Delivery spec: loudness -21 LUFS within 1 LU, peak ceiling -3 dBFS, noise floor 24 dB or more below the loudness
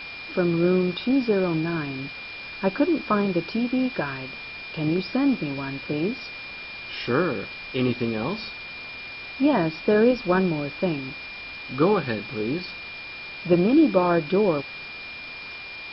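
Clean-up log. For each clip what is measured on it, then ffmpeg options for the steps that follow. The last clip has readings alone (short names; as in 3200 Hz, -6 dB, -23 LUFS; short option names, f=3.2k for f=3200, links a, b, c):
steady tone 2400 Hz; tone level -36 dBFS; noise floor -38 dBFS; noise floor target -49 dBFS; loudness -25.0 LUFS; peak -6.5 dBFS; loudness target -21.0 LUFS
-> -af "bandreject=f=2.4k:w=30"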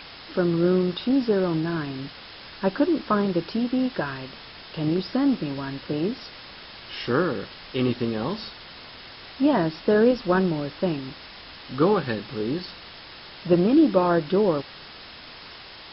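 steady tone none; noise floor -43 dBFS; noise floor target -48 dBFS
-> -af "afftdn=nr=6:nf=-43"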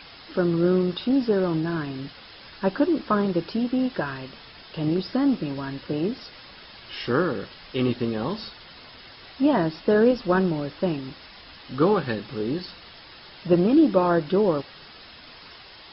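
noise floor -46 dBFS; noise floor target -48 dBFS
-> -af "afftdn=nr=6:nf=-46"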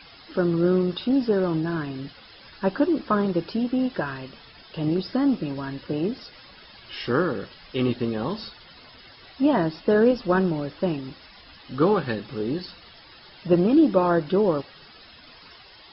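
noise floor -49 dBFS; loudness -24.0 LUFS; peak -7.0 dBFS; loudness target -21.0 LUFS
-> -af "volume=3dB"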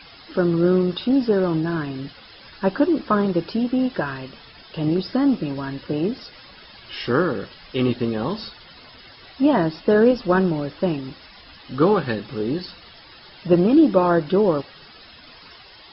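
loudness -21.0 LUFS; peak -4.0 dBFS; noise floor -46 dBFS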